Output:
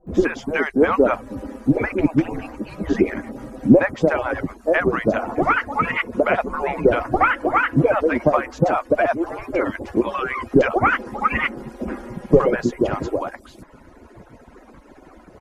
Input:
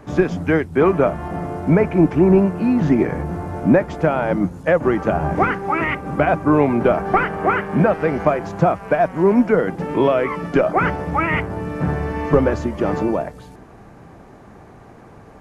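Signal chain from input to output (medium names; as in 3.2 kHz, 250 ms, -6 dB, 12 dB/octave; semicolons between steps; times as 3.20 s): harmonic-percussive separation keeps percussive; bands offset in time lows, highs 70 ms, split 710 Hz; trim +3.5 dB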